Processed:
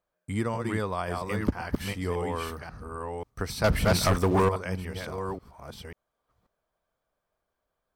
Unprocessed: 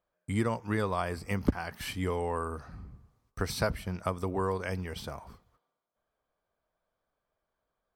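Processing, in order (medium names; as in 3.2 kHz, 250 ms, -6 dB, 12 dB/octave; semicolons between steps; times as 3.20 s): chunks repeated in reverse 539 ms, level -3 dB; 3.64–4.49 s: waveshaping leveller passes 3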